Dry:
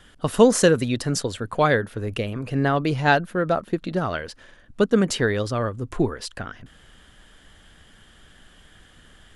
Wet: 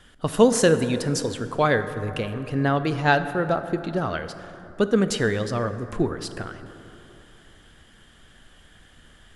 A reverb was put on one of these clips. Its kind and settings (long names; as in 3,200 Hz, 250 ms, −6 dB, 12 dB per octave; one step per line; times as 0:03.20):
dense smooth reverb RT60 3.2 s, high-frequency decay 0.4×, DRR 10 dB
level −1.5 dB